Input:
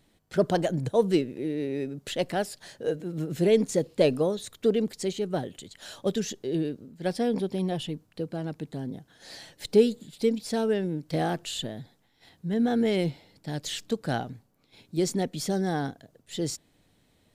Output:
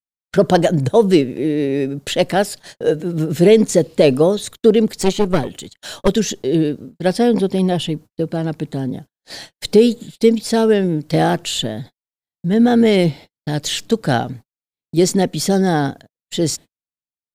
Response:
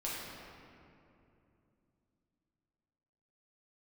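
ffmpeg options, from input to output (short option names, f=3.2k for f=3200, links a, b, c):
-filter_complex "[0:a]asettb=1/sr,asplit=3[a][b][c];[a]atrim=end=5.014[d];[b]atrim=start=5.01:end=6.08,asetpts=PTS-STARTPTS,afade=t=in:d=0.004:c=qsin,afade=t=out:st=1.066:d=0.004:c=qsin,aeval=exprs='0.178*(cos(1*acos(clip(val(0)/0.178,-1,1)))-cos(1*PI/2))+0.0501*(cos(4*acos(clip(val(0)/0.178,-1,1)))-cos(4*PI/2))':c=same[e];[c]atrim=start=6.076[f];[d][e]acrossfade=d=0.004:c1=hsin:c2=qsin[g];[g][f]acrossfade=d=0.004:c1=qsin:c2=hsin,agate=range=-56dB:threshold=-45dB:ratio=16:detection=peak,alimiter=level_in=13dB:limit=-1dB:release=50:level=0:latency=1,volume=-1dB"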